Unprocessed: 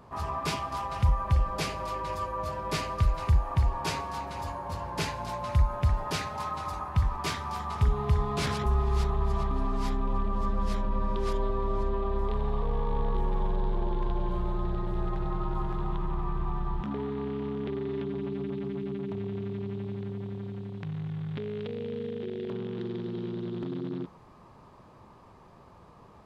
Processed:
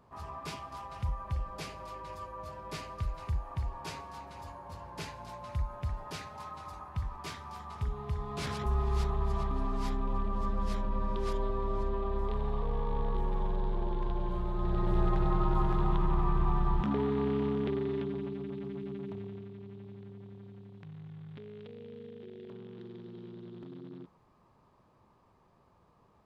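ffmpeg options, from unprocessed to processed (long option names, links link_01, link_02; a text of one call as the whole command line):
ffmpeg -i in.wav -af "volume=3dB,afade=type=in:start_time=8.18:duration=0.66:silence=0.473151,afade=type=in:start_time=14.53:duration=0.4:silence=0.473151,afade=type=out:start_time=17.37:duration=1.02:silence=0.375837,afade=type=out:start_time=19.08:duration=0.42:silence=0.473151" out.wav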